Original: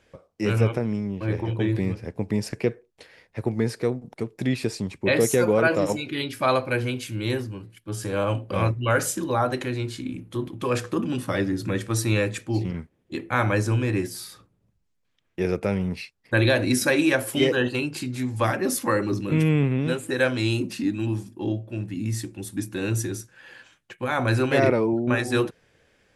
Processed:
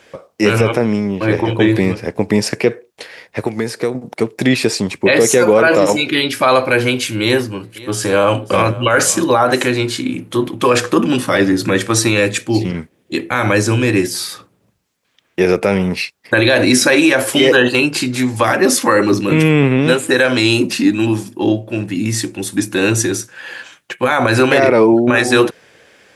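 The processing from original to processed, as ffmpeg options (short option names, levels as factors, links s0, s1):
-filter_complex "[0:a]asettb=1/sr,asplit=3[s0][s1][s2];[s0]atrim=end=3.394[s3];[s1]atrim=start=3.39:end=3.95,asetpts=PTS-STARTPTS,afade=t=in:d=0.004:c=qsin,afade=t=out:st=0.556:d=0.004:c=qsin,acrossover=split=1400|6700[s4][s5][s6];[s4]acompressor=threshold=0.0355:ratio=4[s7];[s5]acompressor=threshold=0.00501:ratio=4[s8];[s6]acompressor=threshold=0.00355:ratio=4[s9];[s7][s8][s9]amix=inputs=3:normalize=0[s10];[s2]atrim=start=3.946[s11];[s3][s10]acrossfade=d=0.004:c1=hsin:c2=qsin[s12];[s12][s11]acrossfade=d=0.004:c1=qsin:c2=hsin,asettb=1/sr,asplit=3[s13][s14][s15];[s13]atrim=end=7.224[s16];[s14]atrim=start=7.22:end=9.79,asetpts=PTS-STARTPTS,afade=t=in:d=0.004:c=qsin,afade=t=out:st=2.566:d=0.004:c=qsin,aecho=1:1:532:0.0891,atrim=end_sample=113337[s17];[s15]atrim=start=9.786[s18];[s16][s17]acrossfade=d=0.004:c1=hsin:c2=qsin[s19];[s19][s18]acrossfade=d=0.004:c1=qsin:c2=hsin,asettb=1/sr,asplit=3[s20][s21][s22];[s20]atrim=end=12.174[s23];[s21]atrim=start=12.17:end=14.13,asetpts=PTS-STARTPTS,afade=t=in:d=0.004:c=qsin,afade=t=out:st=1.956:d=0.004:c=qsin,equalizer=f=980:w=0.61:g=-5[s24];[s22]atrim=start=14.126[s25];[s23][s24]acrossfade=d=0.004:c1=hsin:c2=qsin[s26];[s26][s25]acrossfade=d=0.004:c1=qsin:c2=hsin,highpass=f=360:p=1,acrossover=split=9300[s27][s28];[s28]acompressor=threshold=0.00316:ratio=4:attack=1:release=60[s29];[s27][s29]amix=inputs=2:normalize=0,alimiter=level_in=7.5:limit=0.891:release=50:level=0:latency=1,volume=0.891"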